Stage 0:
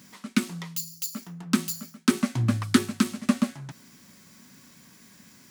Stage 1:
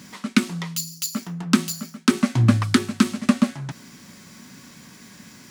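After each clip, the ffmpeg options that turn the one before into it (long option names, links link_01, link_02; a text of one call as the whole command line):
ffmpeg -i in.wav -af "highshelf=frequency=11000:gain=-10,alimiter=limit=-12.5dB:level=0:latency=1:release=477,volume=9dB" out.wav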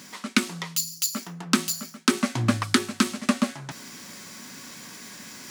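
ffmpeg -i in.wav -af "bass=frequency=250:gain=-10,treble=frequency=4000:gain=2,areverse,acompressor=mode=upward:threshold=-35dB:ratio=2.5,areverse" out.wav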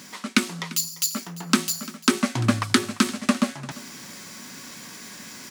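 ffmpeg -i in.wav -af "aecho=1:1:345:0.106,volume=1.5dB" out.wav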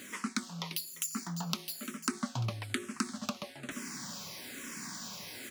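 ffmpeg -i in.wav -filter_complex "[0:a]acompressor=threshold=-30dB:ratio=5,asplit=2[link_01][link_02];[link_02]afreqshift=-1.1[link_03];[link_01][link_03]amix=inputs=2:normalize=1" out.wav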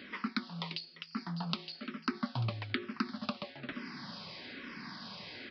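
ffmpeg -i in.wav -af "aresample=11025,aresample=44100" out.wav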